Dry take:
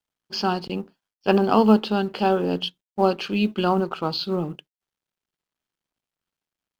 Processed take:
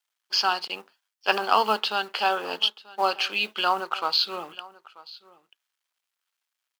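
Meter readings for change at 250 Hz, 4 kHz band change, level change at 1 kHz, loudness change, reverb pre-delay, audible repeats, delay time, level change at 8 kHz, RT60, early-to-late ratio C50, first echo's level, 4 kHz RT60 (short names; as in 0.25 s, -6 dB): -20.0 dB, +6.0 dB, +0.5 dB, -2.0 dB, none, 1, 0.936 s, n/a, none, none, -21.0 dB, none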